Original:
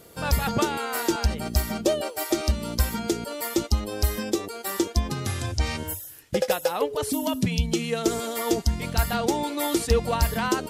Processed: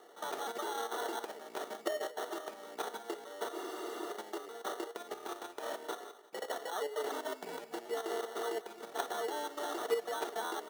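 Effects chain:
tilt shelving filter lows −4 dB, about 880 Hz
output level in coarse steps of 10 dB
decimation without filtering 18×
four-pole ladder high-pass 390 Hz, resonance 50%
notch comb filter 530 Hz
on a send: repeating echo 175 ms, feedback 52%, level −19.5 dB
on the sum: frozen spectrum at 0:03.56, 0.53 s
level +1.5 dB

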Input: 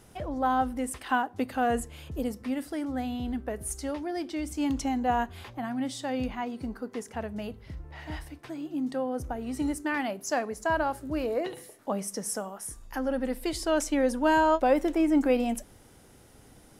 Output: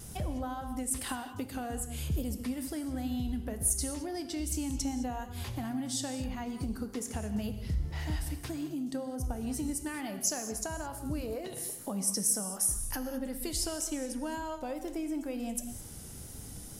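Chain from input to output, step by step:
downward compressor 6 to 1, threshold −38 dBFS, peak gain reduction 18.5 dB
bass and treble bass +11 dB, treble +14 dB
convolution reverb, pre-delay 3 ms, DRR 8 dB
tape wow and flutter 29 cents

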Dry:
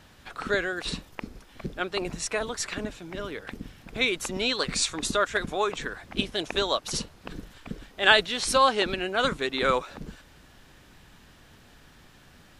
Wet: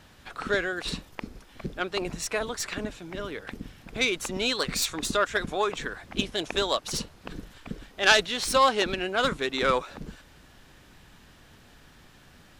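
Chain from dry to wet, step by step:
phase distortion by the signal itself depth 0.092 ms

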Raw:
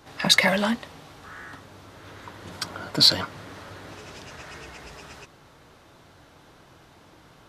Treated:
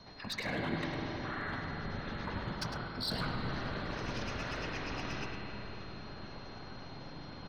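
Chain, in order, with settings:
gate on every frequency bin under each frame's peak −25 dB strong
Butterworth low-pass 6,300 Hz 96 dB per octave
parametric band 110 Hz +11.5 dB 0.76 octaves
mains-hum notches 50/100 Hz
reversed playback
downward compressor 16 to 1, threshold −34 dBFS, peak gain reduction 23 dB
reversed playback
asymmetric clip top −34 dBFS
random phases in short frames
steady tone 4,200 Hz −58 dBFS
slap from a distant wall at 18 metres, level −8 dB
convolution reverb RT60 4.3 s, pre-delay 36 ms, DRR 1.5 dB

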